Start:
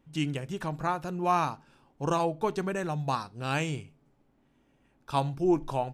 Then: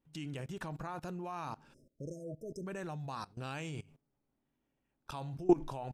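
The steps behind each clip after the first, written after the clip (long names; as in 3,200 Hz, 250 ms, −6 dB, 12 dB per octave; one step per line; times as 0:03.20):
output level in coarse steps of 21 dB
time-frequency box erased 0:01.74–0:02.66, 660–5,000 Hz
level +1 dB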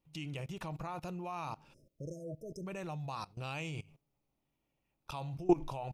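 thirty-one-band graphic EQ 250 Hz −9 dB, 400 Hz −4 dB, 1,600 Hz −10 dB, 2,500 Hz +5 dB, 8,000 Hz −5 dB
level +1.5 dB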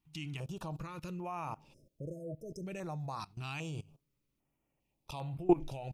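notch on a step sequencer 2.5 Hz 530–5,800 Hz
level +1 dB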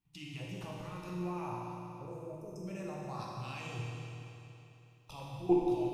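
convolution reverb RT60 3.1 s, pre-delay 8 ms, DRR −5 dB
level −6 dB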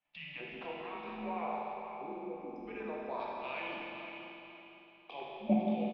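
repeating echo 502 ms, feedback 30%, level −10 dB
single-sideband voice off tune −140 Hz 420–3,500 Hz
level +5 dB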